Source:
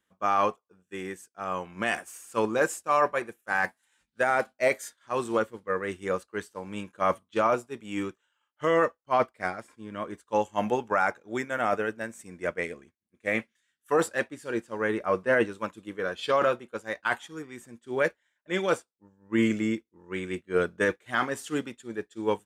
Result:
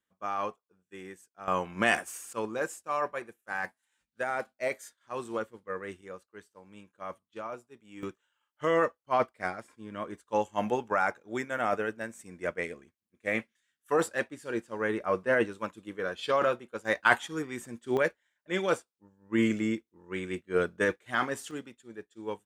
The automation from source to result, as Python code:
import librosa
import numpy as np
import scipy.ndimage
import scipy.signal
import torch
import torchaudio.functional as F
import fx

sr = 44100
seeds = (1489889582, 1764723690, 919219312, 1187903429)

y = fx.gain(x, sr, db=fx.steps((0.0, -8.5), (1.48, 3.0), (2.33, -7.5), (6.01, -15.0), (8.03, -2.5), (16.85, 5.0), (17.97, -2.0), (21.51, -9.5)))